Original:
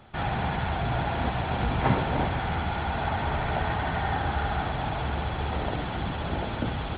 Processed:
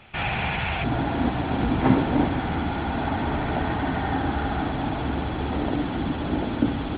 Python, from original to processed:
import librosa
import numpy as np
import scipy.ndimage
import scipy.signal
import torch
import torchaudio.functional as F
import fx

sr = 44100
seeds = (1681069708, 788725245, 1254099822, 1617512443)

y = fx.peak_eq(x, sr, hz=fx.steps((0.0, 2500.0), (0.84, 280.0)), db=14.0, octaves=0.71)